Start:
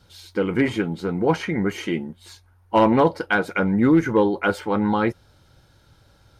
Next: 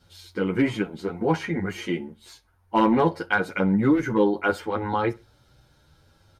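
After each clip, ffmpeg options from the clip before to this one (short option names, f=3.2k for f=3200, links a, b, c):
-filter_complex "[0:a]asplit=2[a][b];[b]adelay=63,lowpass=f=4.1k:p=1,volume=-22dB,asplit=2[c][d];[d]adelay=63,lowpass=f=4.1k:p=1,volume=0.32[e];[a][c][e]amix=inputs=3:normalize=0,asplit=2[f][g];[g]adelay=9.2,afreqshift=0.64[h];[f][h]amix=inputs=2:normalize=1"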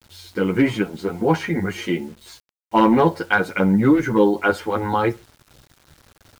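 -af "acrusher=bits=8:mix=0:aa=0.000001,volume=4.5dB"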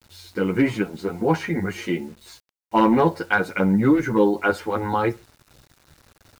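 -af "bandreject=f=3.2k:w=16,volume=-2dB"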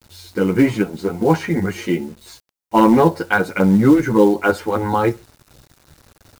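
-filter_complex "[0:a]asplit=2[a][b];[b]acrusher=bits=4:mode=log:mix=0:aa=0.000001,volume=-6dB[c];[a][c]amix=inputs=2:normalize=0,equalizer=f=2.2k:t=o:w=2.4:g=-3.5,volume=2dB"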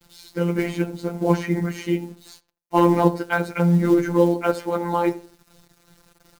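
-filter_complex "[0:a]asplit=2[a][b];[b]adelay=82,lowpass=f=1.2k:p=1,volume=-15dB,asplit=2[c][d];[d]adelay=82,lowpass=f=1.2k:p=1,volume=0.32,asplit=2[e][f];[f]adelay=82,lowpass=f=1.2k:p=1,volume=0.32[g];[a][c][e][g]amix=inputs=4:normalize=0,afftfilt=real='hypot(re,im)*cos(PI*b)':imag='0':win_size=1024:overlap=0.75,volume=-1.5dB"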